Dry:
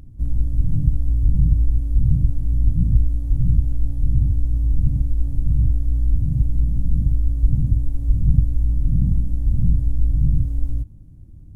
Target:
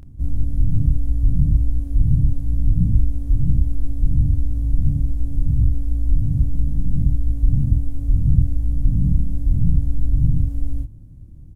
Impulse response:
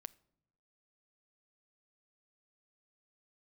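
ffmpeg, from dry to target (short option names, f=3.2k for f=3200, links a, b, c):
-filter_complex "[0:a]asplit=2[a][b];[b]adelay=29,volume=-3dB[c];[a][c]amix=inputs=2:normalize=0"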